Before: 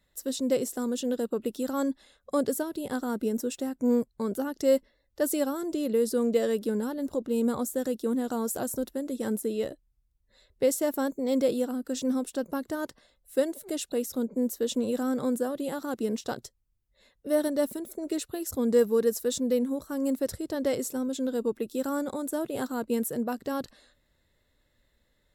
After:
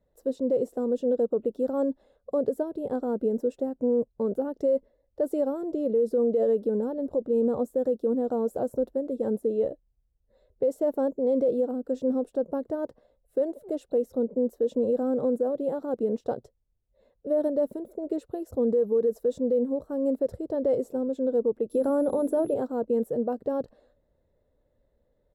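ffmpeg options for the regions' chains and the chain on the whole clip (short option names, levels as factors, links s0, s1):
-filter_complex "[0:a]asettb=1/sr,asplit=3[s0][s1][s2];[s0]atrim=end=21.704[s3];[s1]atrim=start=21.7:end=22.54,asetpts=PTS-STARTPTS,afade=t=in:d=0.004:c=qsin,afade=t=out:st=0.836:d=0.004:c=qsin,acontrast=77,aeval=exprs='val(0)+0.0224*sin(2*PI*11000*n/s)':c=same,bandreject=f=50:t=h:w=6,bandreject=f=100:t=h:w=6,bandreject=f=150:t=h:w=6,bandreject=f=200:t=h:w=6,bandreject=f=250:t=h:w=6,bandreject=f=300:t=h:w=6,bandreject=f=350:t=h:w=6,bandreject=f=400:t=h:w=6,bandreject=f=450:t=h:w=6[s4];[s2]atrim=start=22.536[s5];[s3][s4]acrossfade=d=0.004:c1=hsin:c2=qsin[s6];[s6][s5]acrossfade=d=0.004:c1=qsin:c2=hsin,firequalizer=gain_entry='entry(340,0);entry(480,8);entry(1100,-7);entry(2000,-16);entry(6100,-22)':delay=0.05:min_phase=1,alimiter=limit=0.141:level=0:latency=1:release=46"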